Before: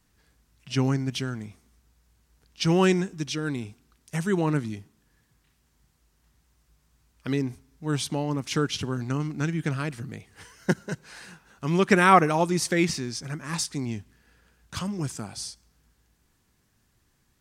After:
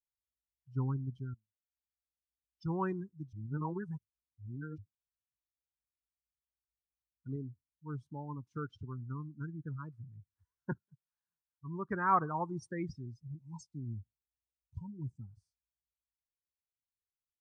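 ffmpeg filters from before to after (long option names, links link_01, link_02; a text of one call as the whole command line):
ffmpeg -i in.wav -filter_complex "[0:a]asettb=1/sr,asplit=3[link_01][link_02][link_03];[link_01]atrim=end=7.364[link_04];[link_02]atrim=start=7.36:end=10.16,asetpts=PTS-STARTPTS,afade=type=in:duration=0.004:curve=qsin,afade=type=out:start_time=2.796:duration=0.004:curve=qsin,lowshelf=frequency=160:gain=-5[link_05];[link_03]atrim=start=10.156[link_06];[link_04][link_05]acrossfade=duration=0.004:curve1=hsin:curve2=qsin[link_07];[link_07][link_06]acrossfade=duration=0.004:curve1=qsin:curve2=hsin,asettb=1/sr,asplit=3[link_08][link_09][link_10];[link_08]atrim=end=13.064[link_11];[link_09]atrim=start=13.06:end=15.21,asetpts=PTS-STARTPTS,afade=type=in:duration=0.004:curve=qsin,afade=type=out:start_time=2.146:duration=0.004:curve=qsin,asuperstop=centerf=1400:order=20:qfactor=1.4[link_12];[link_10]atrim=start=15.206[link_13];[link_11][link_12]acrossfade=duration=0.004:curve1=hsin:curve2=qsin[link_14];[link_14][link_13]acrossfade=duration=0.004:curve1=qsin:curve2=hsin,asplit=5[link_15][link_16][link_17][link_18][link_19];[link_15]atrim=end=1.34,asetpts=PTS-STARTPTS,afade=type=out:start_time=1.336:duration=0.004:curve=hsin:silence=0.0841395[link_20];[link_16]atrim=start=1.34:end=3.332,asetpts=PTS-STARTPTS,afade=type=in:duration=1.42:silence=0.0841395[link_21];[link_17]atrim=start=3.328:end=4.782,asetpts=PTS-STARTPTS,areverse[link_22];[link_18]atrim=start=4.778:end=10.78,asetpts=PTS-STARTPTS,afade=type=out:start_time=5.998:duration=0.004:curve=hsin:silence=0.158489[link_23];[link_19]atrim=start=10.78,asetpts=PTS-STARTPTS,afade=type=in:duration=1.62:silence=0.158489[link_24];[link_20][link_21]concat=n=2:v=0:a=1[link_25];[link_25][link_22]acrossfade=duration=0.004:curve1=hsin:curve2=hsin[link_26];[link_23][link_24]concat=n=2:v=0:a=1[link_27];[link_26][link_27]acrossfade=duration=0.004:curve1=hsin:curve2=hsin,firequalizer=gain_entry='entry(110,0);entry(180,-10);entry(660,-12);entry(960,-2);entry(2300,-17);entry(6100,-10)':delay=0.05:min_phase=1,afftdn=noise_reduction=35:noise_floor=-32,adynamicequalizer=threshold=0.00141:dfrequency=3500:dqfactor=1.3:tfrequency=3500:tqfactor=1.3:attack=5:release=100:ratio=0.375:range=3.5:mode=boostabove:tftype=bell,volume=-4.5dB" out.wav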